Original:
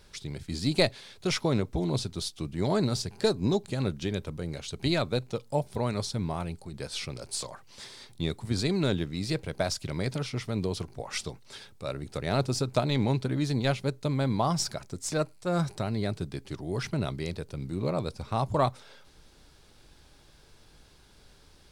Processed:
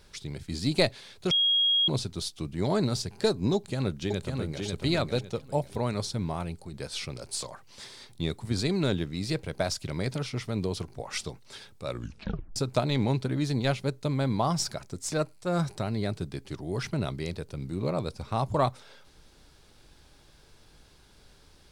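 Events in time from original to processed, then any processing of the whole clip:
1.31–1.88 bleep 3280 Hz -20.5 dBFS
3.55–4.65 echo throw 0.55 s, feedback 30%, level -4 dB
11.88 tape stop 0.68 s

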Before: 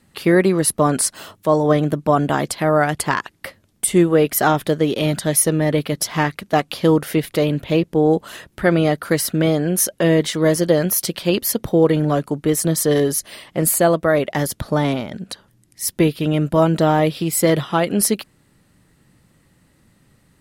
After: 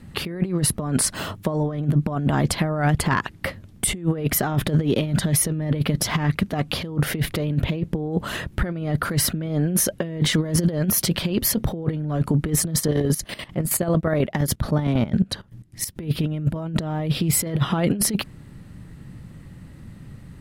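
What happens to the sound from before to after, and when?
12.79–15.95 chopper 12 Hz -> 4.2 Hz
whole clip: tone controls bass +11 dB, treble -6 dB; negative-ratio compressor -18 dBFS, ratio -0.5; limiter -10.5 dBFS

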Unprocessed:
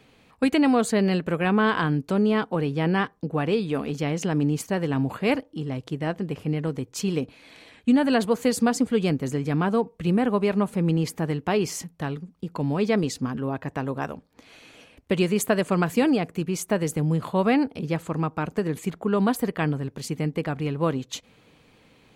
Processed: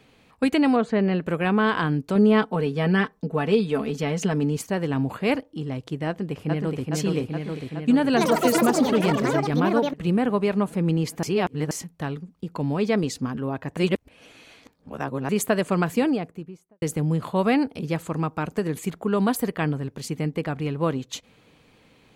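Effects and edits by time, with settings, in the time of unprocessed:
0.76–1.21 LPF 2500 Hz
2.15–4.57 comb 4.6 ms
6.07–6.91 echo throw 0.42 s, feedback 75%, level -2 dB
8.08–10.58 echoes that change speed 87 ms, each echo +6 st, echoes 3
11.23–11.71 reverse
13.77–15.29 reverse
15.83–16.82 studio fade out
17.36–19.55 high shelf 5400 Hz +5 dB

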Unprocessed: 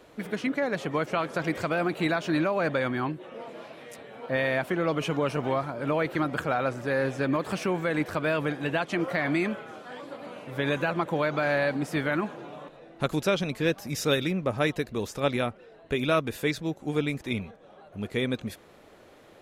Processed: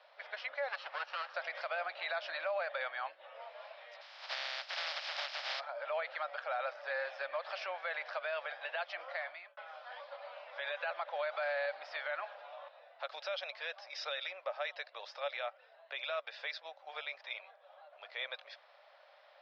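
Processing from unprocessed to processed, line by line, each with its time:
0.68–1.35 minimum comb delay 0.7 ms
4–5.59 spectral contrast lowered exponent 0.14
8.84–9.57 fade out
whole clip: Chebyshev band-pass 570–5200 Hz, order 5; dynamic EQ 1000 Hz, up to -6 dB, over -48 dBFS, Q 4.8; limiter -23.5 dBFS; gain -4.5 dB

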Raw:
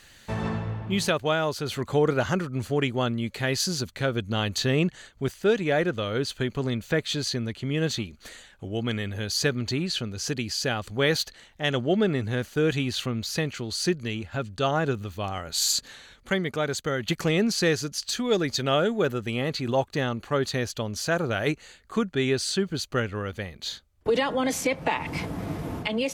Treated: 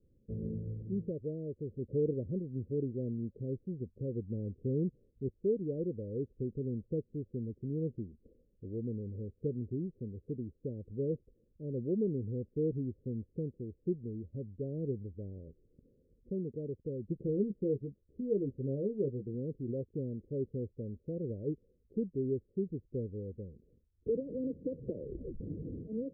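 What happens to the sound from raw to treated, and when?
17.14–19.34 doubler 15 ms -6.5 dB
24.74 tape stop 0.66 s
whole clip: steep low-pass 510 Hz 72 dB/oct; gain -8.5 dB

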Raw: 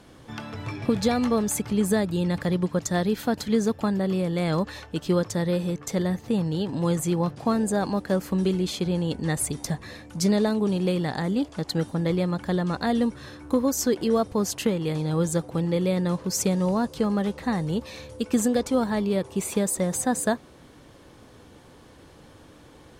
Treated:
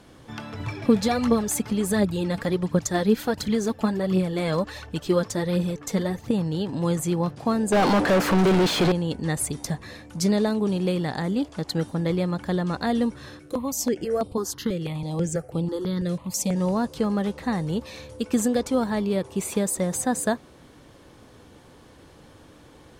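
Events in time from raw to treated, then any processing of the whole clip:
0.6–6.31 phaser 1.4 Hz, delay 4.8 ms, feedback 49%
7.72–8.92 overdrive pedal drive 37 dB, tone 1800 Hz, clips at -12 dBFS
13.39–16.56 step phaser 6.1 Hz 250–6200 Hz

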